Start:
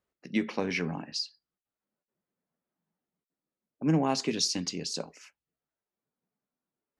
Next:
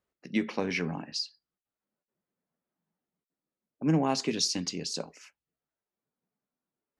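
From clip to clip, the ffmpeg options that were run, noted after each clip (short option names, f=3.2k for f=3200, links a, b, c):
-af anull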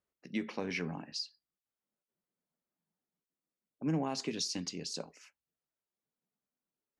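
-af "alimiter=limit=-19dB:level=0:latency=1:release=108,volume=-5.5dB"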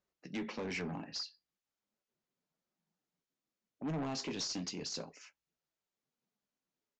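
-af "flanger=delay=5.1:depth=7.2:regen=-54:speed=0.36:shape=triangular,aresample=16000,asoftclip=type=tanh:threshold=-40dB,aresample=44100,volume=6dB"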